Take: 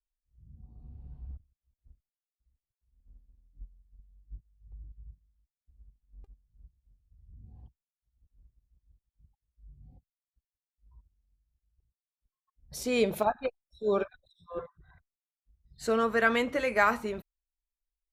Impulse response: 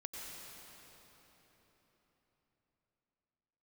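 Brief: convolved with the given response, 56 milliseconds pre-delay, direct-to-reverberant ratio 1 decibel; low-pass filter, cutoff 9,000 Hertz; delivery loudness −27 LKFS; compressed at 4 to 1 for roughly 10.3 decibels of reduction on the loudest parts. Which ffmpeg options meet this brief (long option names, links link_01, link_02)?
-filter_complex "[0:a]lowpass=9000,acompressor=threshold=-32dB:ratio=4,asplit=2[link_01][link_02];[1:a]atrim=start_sample=2205,adelay=56[link_03];[link_02][link_03]afir=irnorm=-1:irlink=0,volume=0dB[link_04];[link_01][link_04]amix=inputs=2:normalize=0,volume=10dB"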